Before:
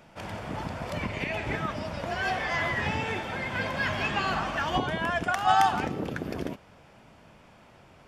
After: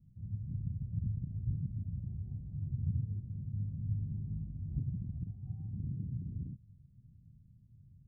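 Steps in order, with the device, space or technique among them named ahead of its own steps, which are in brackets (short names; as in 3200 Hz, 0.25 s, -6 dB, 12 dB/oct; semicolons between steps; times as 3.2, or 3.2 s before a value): the neighbour's flat through the wall (LPF 160 Hz 24 dB/oct; bell 110 Hz +6.5 dB 0.66 oct); gain -1.5 dB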